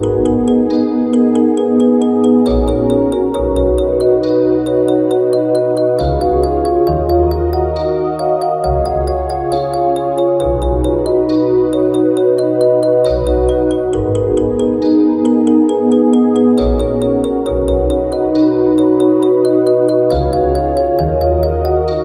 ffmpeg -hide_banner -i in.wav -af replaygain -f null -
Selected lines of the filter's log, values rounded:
track_gain = -4.9 dB
track_peak = 0.596